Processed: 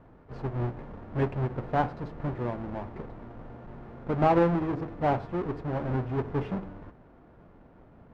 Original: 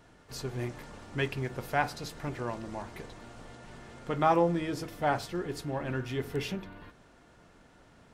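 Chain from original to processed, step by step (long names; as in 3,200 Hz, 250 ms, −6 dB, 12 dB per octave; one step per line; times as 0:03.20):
each half-wave held at its own peak
low-pass filter 1,200 Hz 12 dB per octave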